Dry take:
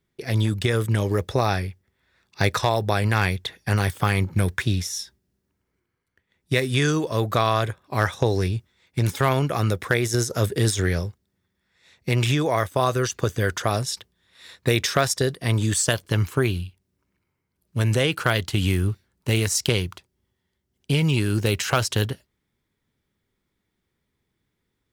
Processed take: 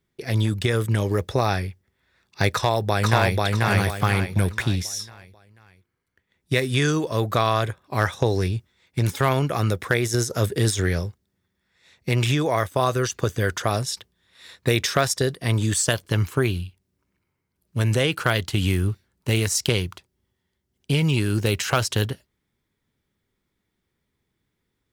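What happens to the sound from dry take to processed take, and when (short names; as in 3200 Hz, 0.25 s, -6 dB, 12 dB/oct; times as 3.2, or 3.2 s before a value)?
2.53–3.4 echo throw 0.49 s, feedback 40%, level -1 dB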